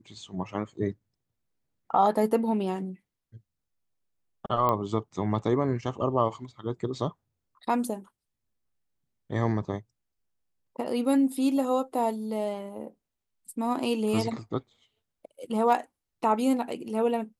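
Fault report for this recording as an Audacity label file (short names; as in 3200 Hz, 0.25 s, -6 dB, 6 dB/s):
4.690000	4.690000	pop -14 dBFS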